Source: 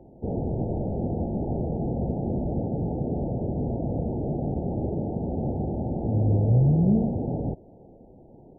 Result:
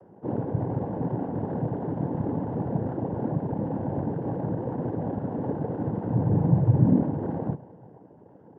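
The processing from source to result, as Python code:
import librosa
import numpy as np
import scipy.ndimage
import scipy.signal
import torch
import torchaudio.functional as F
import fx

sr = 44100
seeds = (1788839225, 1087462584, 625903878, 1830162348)

y = fx.rev_spring(x, sr, rt60_s=1.8, pass_ms=(34,), chirp_ms=70, drr_db=17.5)
y = fx.noise_vocoder(y, sr, seeds[0], bands=8)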